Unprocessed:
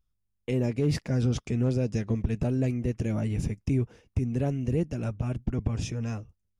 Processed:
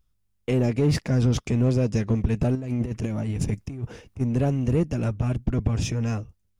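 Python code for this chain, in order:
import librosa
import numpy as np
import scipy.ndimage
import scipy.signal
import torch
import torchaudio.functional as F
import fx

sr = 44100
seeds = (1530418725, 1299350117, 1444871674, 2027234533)

p1 = np.clip(x, -10.0 ** (-32.0 / 20.0), 10.0 ** (-32.0 / 20.0))
p2 = x + (p1 * 10.0 ** (-4.5 / 20.0))
p3 = fx.over_compress(p2, sr, threshold_db=-29.0, ratio=-0.5, at=(2.55, 4.21))
y = p3 * 10.0 ** (3.0 / 20.0)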